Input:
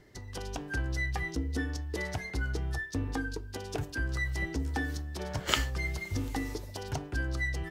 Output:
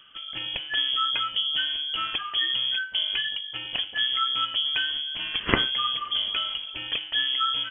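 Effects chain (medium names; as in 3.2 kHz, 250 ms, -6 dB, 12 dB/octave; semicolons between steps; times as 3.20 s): treble shelf 2.1 kHz +5.5 dB; frequency inversion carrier 3.3 kHz; trim +4.5 dB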